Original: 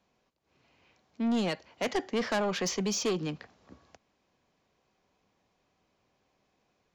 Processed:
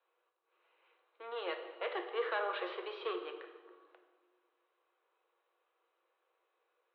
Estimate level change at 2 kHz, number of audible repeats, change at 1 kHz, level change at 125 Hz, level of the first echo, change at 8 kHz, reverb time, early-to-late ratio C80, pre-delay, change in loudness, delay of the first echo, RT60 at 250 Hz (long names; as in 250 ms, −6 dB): −4.0 dB, no echo audible, −3.5 dB, below −40 dB, no echo audible, below −40 dB, 1.4 s, 9.5 dB, 3 ms, −8.0 dB, no echo audible, 2.1 s